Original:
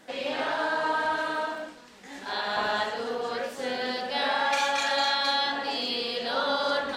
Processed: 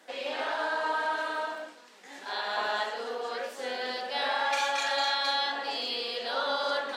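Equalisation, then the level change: high-pass 370 Hz 12 dB/octave; -2.5 dB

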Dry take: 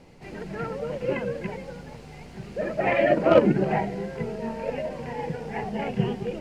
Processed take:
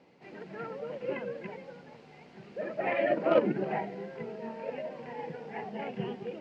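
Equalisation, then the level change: band-pass 210–4300 Hz; -7.0 dB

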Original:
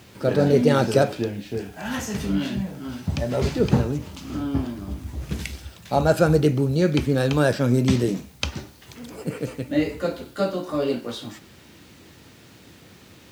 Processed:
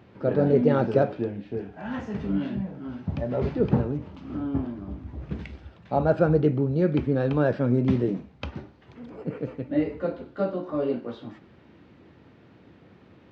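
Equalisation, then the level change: tape spacing loss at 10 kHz 44 dB; bass shelf 110 Hz -7.5 dB; 0.0 dB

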